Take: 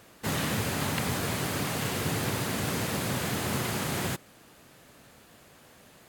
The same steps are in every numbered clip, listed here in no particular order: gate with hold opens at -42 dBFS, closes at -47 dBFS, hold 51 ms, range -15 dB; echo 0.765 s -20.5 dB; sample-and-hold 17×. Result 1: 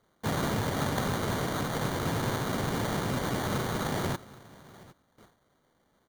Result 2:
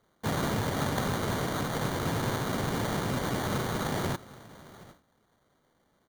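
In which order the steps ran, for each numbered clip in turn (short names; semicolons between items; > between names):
gate with hold > echo > sample-and-hold; echo > sample-and-hold > gate with hold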